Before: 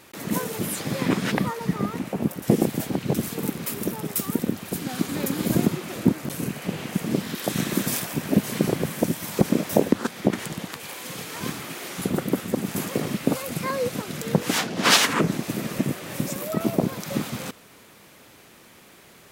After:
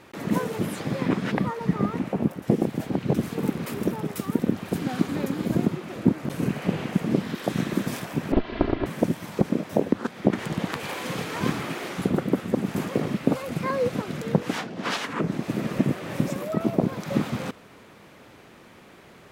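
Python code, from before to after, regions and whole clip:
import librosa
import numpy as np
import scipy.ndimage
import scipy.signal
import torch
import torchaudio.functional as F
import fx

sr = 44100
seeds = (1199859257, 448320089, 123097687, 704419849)

y = fx.chain(x, sr, fx.lower_of_two(delay_ms=3.0),
    fx.steep_lowpass(hz=4300.0, slope=36),
    fx.doppler_dist(depth_ms=0.36), at=(8.32, 8.86))
y = fx.rider(y, sr, range_db=10, speed_s=0.5)
y = fx.lowpass(y, sr, hz=1900.0, slope=6)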